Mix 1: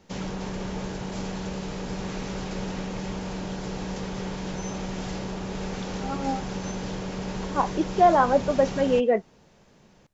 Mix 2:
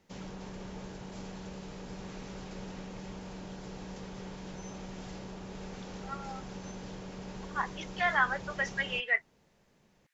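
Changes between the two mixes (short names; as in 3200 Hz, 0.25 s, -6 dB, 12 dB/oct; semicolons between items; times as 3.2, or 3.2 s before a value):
speech: add resonant high-pass 1900 Hz, resonance Q 3.5; background -11.0 dB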